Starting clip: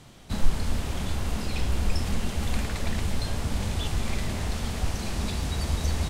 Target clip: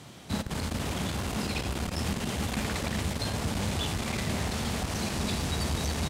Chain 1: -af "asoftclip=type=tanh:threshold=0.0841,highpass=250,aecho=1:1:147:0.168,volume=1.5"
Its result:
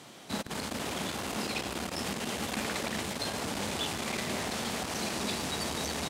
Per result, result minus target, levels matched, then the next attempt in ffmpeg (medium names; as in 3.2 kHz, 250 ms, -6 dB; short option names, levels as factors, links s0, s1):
echo 61 ms late; 125 Hz band -9.0 dB
-af "asoftclip=type=tanh:threshold=0.0841,highpass=250,aecho=1:1:86:0.168,volume=1.5"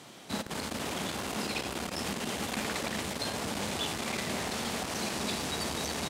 125 Hz band -8.5 dB
-af "asoftclip=type=tanh:threshold=0.0841,highpass=97,aecho=1:1:86:0.168,volume=1.5"